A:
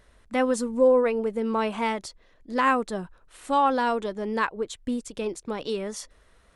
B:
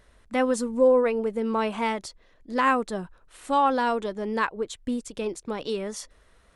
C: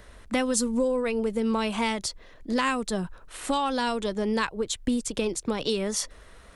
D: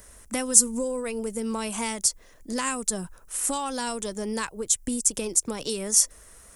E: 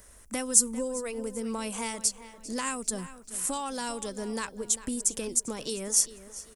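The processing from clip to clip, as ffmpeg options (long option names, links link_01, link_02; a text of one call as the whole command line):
ffmpeg -i in.wav -af anull out.wav
ffmpeg -i in.wav -filter_complex "[0:a]acrossover=split=160|3000[link_01][link_02][link_03];[link_02]acompressor=threshold=-35dB:ratio=6[link_04];[link_01][link_04][link_03]amix=inputs=3:normalize=0,volume=9dB" out.wav
ffmpeg -i in.wav -af "aexciter=amount=7.6:drive=4.2:freq=5600,volume=-4dB" out.wav
ffmpeg -i in.wav -filter_complex "[0:a]asplit=2[link_01][link_02];[link_02]adelay=397,lowpass=frequency=4900:poles=1,volume=-14dB,asplit=2[link_03][link_04];[link_04]adelay=397,lowpass=frequency=4900:poles=1,volume=0.41,asplit=2[link_05][link_06];[link_06]adelay=397,lowpass=frequency=4900:poles=1,volume=0.41,asplit=2[link_07][link_08];[link_08]adelay=397,lowpass=frequency=4900:poles=1,volume=0.41[link_09];[link_01][link_03][link_05][link_07][link_09]amix=inputs=5:normalize=0,volume=-4dB" out.wav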